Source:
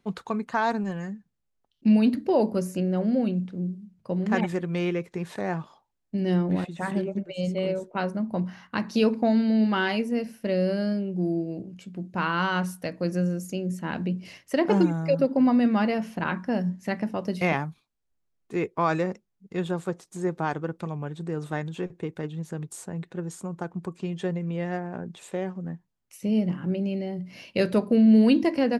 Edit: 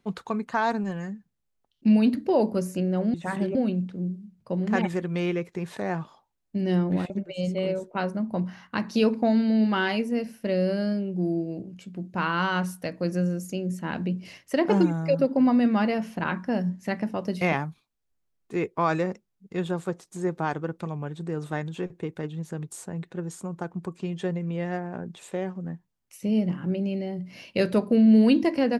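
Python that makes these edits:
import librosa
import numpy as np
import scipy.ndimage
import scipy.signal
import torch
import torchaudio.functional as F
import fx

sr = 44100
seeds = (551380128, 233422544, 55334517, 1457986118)

y = fx.edit(x, sr, fx.move(start_s=6.69, length_s=0.41, to_s=3.14), tone=tone)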